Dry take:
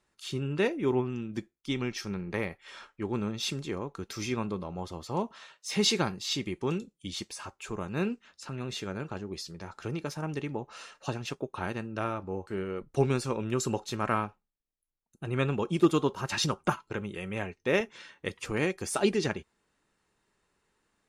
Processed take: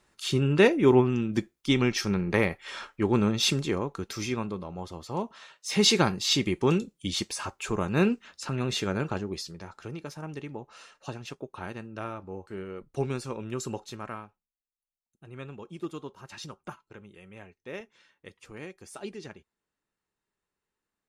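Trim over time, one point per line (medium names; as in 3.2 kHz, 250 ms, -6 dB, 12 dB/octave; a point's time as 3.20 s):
3.51 s +8 dB
4.53 s -0.5 dB
5.27 s -0.5 dB
6.20 s +7 dB
9.10 s +7 dB
9.89 s -4 dB
13.84 s -4 dB
14.25 s -13 dB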